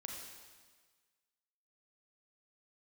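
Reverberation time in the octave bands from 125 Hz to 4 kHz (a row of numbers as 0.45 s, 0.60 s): 1.4 s, 1.4 s, 1.5 s, 1.5 s, 1.5 s, 1.5 s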